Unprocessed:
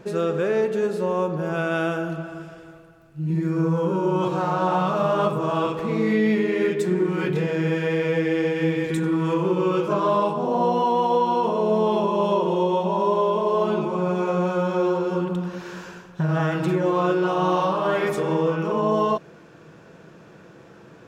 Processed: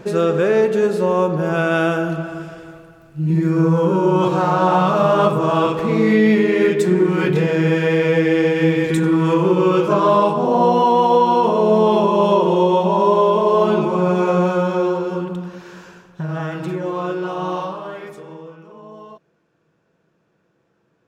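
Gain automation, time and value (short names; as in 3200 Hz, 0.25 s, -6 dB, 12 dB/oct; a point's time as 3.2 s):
14.37 s +6.5 dB
15.63 s -2.5 dB
17.58 s -2.5 dB
17.93 s -9.5 dB
18.68 s -18 dB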